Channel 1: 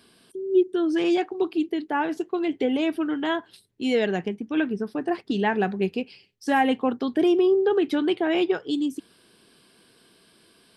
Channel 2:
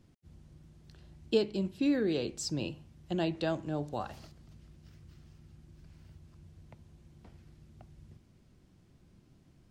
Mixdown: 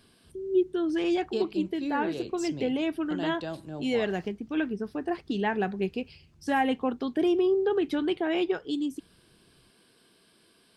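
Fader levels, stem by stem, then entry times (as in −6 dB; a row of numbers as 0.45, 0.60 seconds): −4.5, −4.0 decibels; 0.00, 0.00 seconds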